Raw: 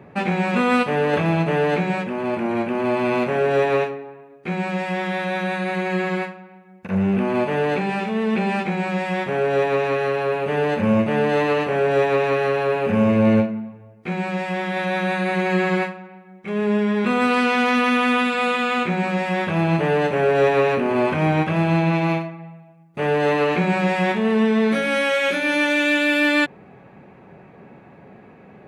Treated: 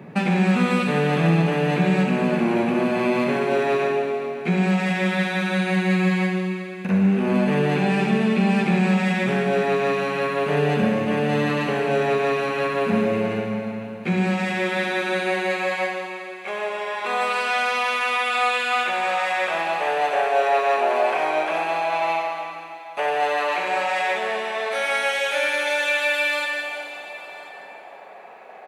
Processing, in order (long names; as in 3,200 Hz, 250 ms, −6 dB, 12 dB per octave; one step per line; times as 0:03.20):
high-shelf EQ 2,700 Hz +8 dB
downward compressor, threshold −22 dBFS, peak gain reduction 10 dB
high-pass filter sweep 170 Hz → 690 Hz, 0:13.94–0:16.03
single-tap delay 1,043 ms −19 dB
convolution reverb RT60 2.6 s, pre-delay 48 ms, DRR 1.5 dB